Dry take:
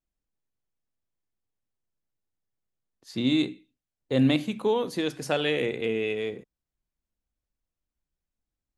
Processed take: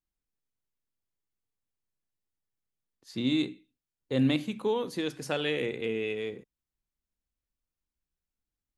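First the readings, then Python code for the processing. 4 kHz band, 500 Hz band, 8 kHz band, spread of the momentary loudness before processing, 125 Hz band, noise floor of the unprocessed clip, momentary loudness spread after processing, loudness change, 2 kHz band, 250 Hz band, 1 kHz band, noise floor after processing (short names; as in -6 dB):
-3.5 dB, -4.0 dB, -3.5 dB, 9 LU, -3.5 dB, under -85 dBFS, 9 LU, -4.0 dB, -3.5 dB, -3.5 dB, -4.5 dB, under -85 dBFS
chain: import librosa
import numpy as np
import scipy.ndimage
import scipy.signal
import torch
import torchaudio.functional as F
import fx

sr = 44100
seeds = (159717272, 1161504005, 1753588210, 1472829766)

y = fx.peak_eq(x, sr, hz=670.0, db=-4.0, octaves=0.4)
y = F.gain(torch.from_numpy(y), -3.5).numpy()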